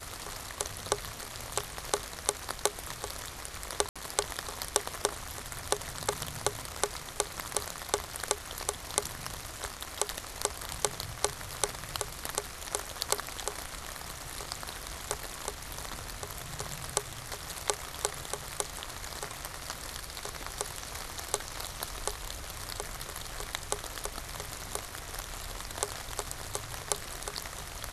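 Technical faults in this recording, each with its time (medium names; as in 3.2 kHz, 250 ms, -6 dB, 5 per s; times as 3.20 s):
3.89–3.96 s: dropout 66 ms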